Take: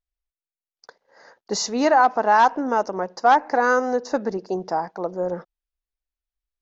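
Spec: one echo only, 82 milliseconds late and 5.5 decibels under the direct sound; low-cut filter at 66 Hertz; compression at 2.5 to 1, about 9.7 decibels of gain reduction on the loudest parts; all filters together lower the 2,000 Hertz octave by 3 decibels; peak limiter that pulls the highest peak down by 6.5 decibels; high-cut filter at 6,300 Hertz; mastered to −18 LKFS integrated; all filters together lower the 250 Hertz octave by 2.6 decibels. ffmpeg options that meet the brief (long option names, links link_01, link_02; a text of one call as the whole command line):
ffmpeg -i in.wav -af "highpass=66,lowpass=6300,equalizer=frequency=250:width_type=o:gain=-3,equalizer=frequency=2000:width_type=o:gain=-4.5,acompressor=threshold=-28dB:ratio=2.5,alimiter=limit=-22dB:level=0:latency=1,aecho=1:1:82:0.531,volume=13.5dB" out.wav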